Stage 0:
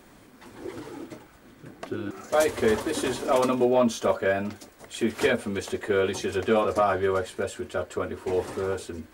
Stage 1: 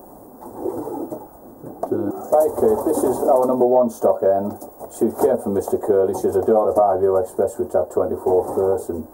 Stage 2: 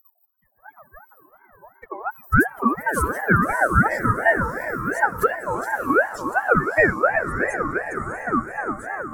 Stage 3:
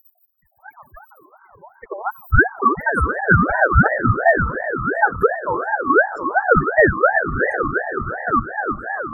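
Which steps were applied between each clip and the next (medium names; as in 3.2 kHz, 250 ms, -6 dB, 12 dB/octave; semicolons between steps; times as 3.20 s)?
FFT filter 150 Hz 0 dB, 810 Hz +12 dB, 2.5 kHz -29 dB, 14 kHz +11 dB; compression 3:1, threshold -20 dBFS, peak gain reduction 10 dB; trim +5.5 dB
expander on every frequency bin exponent 3; echo that smears into a reverb 634 ms, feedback 47%, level -6.5 dB; ring modulator with a swept carrier 970 Hz, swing 30%, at 2.8 Hz; trim +6 dB
resonances exaggerated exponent 3; trim +4 dB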